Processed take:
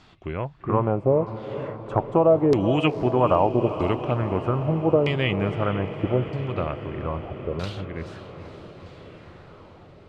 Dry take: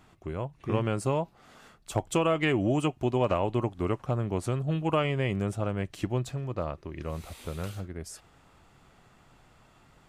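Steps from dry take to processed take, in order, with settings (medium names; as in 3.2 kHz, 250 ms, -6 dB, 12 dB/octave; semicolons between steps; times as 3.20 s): treble shelf 7.4 kHz +5 dB; LFO low-pass saw down 0.79 Hz 410–4800 Hz; echo that smears into a reverb 470 ms, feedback 70%, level -11.5 dB; trim +4 dB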